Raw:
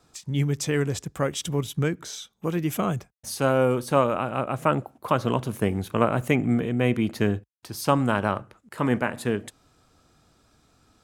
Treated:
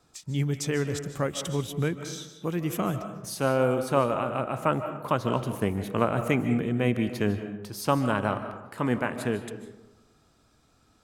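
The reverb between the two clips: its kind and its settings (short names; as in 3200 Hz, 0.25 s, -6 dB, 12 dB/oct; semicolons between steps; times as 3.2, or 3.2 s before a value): digital reverb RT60 1 s, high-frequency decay 0.45×, pre-delay 0.11 s, DRR 9 dB; gain -3 dB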